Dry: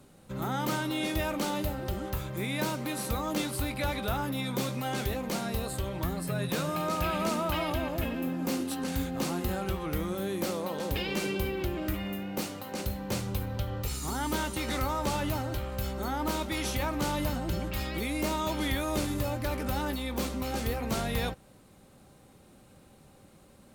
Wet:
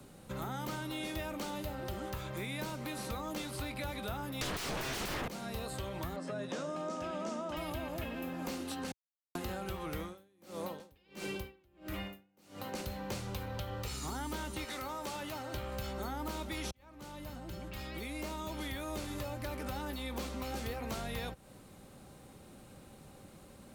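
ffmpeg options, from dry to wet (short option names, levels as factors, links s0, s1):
-filter_complex "[0:a]asettb=1/sr,asplit=3[s0][s1][s2];[s0]atrim=end=4.414[s3];[s1]atrim=start=4.41:end=5.28,asetpts=PTS-STARTPTS,afade=t=in:d=0.004:c=qsin,afade=t=out:st=0.866:d=0.004:c=qsin,aeval=exprs='0.106*sin(PI/2*8.91*val(0)/0.106)':c=same[s4];[s2]atrim=start=5.276[s5];[s3][s4]acrossfade=d=0.004:c1=hsin:c2=qsin[s6];[s6][s5]acrossfade=d=0.004:c1=qsin:c2=hsin,asettb=1/sr,asplit=3[s7][s8][s9];[s7]atrim=end=6.164[s10];[s8]atrim=start=6.16:end=7.57,asetpts=PTS-STARTPTS,afade=t=in:d=0.004:c=qsin,afade=t=out:st=1.406:d=0.004:c=qsin,highpass=230,equalizer=f=250:t=q:w=4:g=9,equalizer=f=580:t=q:w=4:g=6,equalizer=f=2400:t=q:w=4:g=-6,equalizer=f=4200:t=q:w=4:g=-8,lowpass=f=6200:w=0.5412,lowpass=f=6200:w=1.3066[s11];[s9]atrim=start=7.566[s12];[s10][s11]acrossfade=d=0.004:c1=hsin:c2=qsin[s13];[s13][s12]acrossfade=d=0.004:c1=qsin:c2=hsin,asplit=3[s14][s15][s16];[s14]afade=t=out:st=10.01:d=0.02[s17];[s15]aeval=exprs='val(0)*pow(10,-40*(0.5-0.5*cos(2*PI*1.5*n/s))/20)':c=same,afade=t=in:st=10.01:d=0.02,afade=t=out:st=12.72:d=0.02[s18];[s16]afade=t=in:st=12.72:d=0.02[s19];[s17][s18][s19]amix=inputs=3:normalize=0,asettb=1/sr,asplit=3[s20][s21][s22];[s20]atrim=end=14.644[s23];[s21]atrim=start=14.64:end=15.54,asetpts=PTS-STARTPTS,afade=t=in:d=0.004:c=qsin,afade=t=out:st=0.896:d=0.004:c=qsin,highpass=f=800:p=1[s24];[s22]atrim=start=15.536[s25];[s23][s24]acrossfade=d=0.004:c1=hsin:c2=qsin[s26];[s26][s25]acrossfade=d=0.004:c1=qsin:c2=hsin,asplit=4[s27][s28][s29][s30];[s27]atrim=end=8.92,asetpts=PTS-STARTPTS,afade=t=out:st=8.916:d=0.004:c=hsin[s31];[s28]atrim=start=8.92:end=9.35,asetpts=PTS-STARTPTS,volume=0[s32];[s29]atrim=start=9.35:end=16.71,asetpts=PTS-STARTPTS,afade=t=in:d=0.004:c=hsin,afade=t=out:st=7.356:d=0.004:c=hsin[s33];[s30]atrim=start=16.71,asetpts=PTS-STARTPTS,afade=t=in:d=3.57[s34];[s31][s32][s33][s34]concat=n=4:v=0:a=1,acrossover=split=81|460|6900[s35][s36][s37][s38];[s35]acompressor=threshold=0.00355:ratio=4[s39];[s36]acompressor=threshold=0.00501:ratio=4[s40];[s37]acompressor=threshold=0.00631:ratio=4[s41];[s38]acompressor=threshold=0.00158:ratio=4[s42];[s39][s40][s41][s42]amix=inputs=4:normalize=0,volume=1.26"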